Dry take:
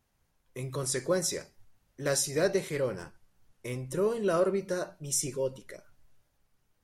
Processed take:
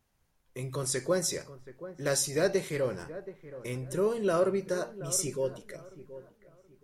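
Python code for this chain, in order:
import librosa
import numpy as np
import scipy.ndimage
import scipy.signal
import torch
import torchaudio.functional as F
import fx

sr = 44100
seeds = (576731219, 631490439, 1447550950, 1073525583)

y = fx.echo_wet_lowpass(x, sr, ms=726, feedback_pct=30, hz=1700.0, wet_db=-14.5)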